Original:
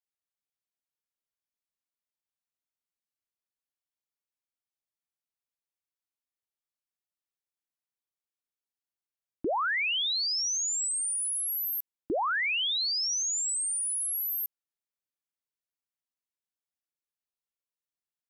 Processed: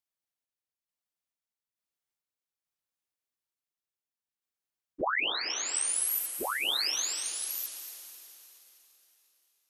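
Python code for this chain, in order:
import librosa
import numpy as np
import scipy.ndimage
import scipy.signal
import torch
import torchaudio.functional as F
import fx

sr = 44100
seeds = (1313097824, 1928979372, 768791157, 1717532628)

y = fx.tremolo_random(x, sr, seeds[0], hz=1.2, depth_pct=55)
y = fx.echo_diffused(y, sr, ms=486, feedback_pct=56, wet_db=-10.0)
y = fx.stretch_vocoder_free(y, sr, factor=0.53)
y = y * librosa.db_to_amplitude(5.5)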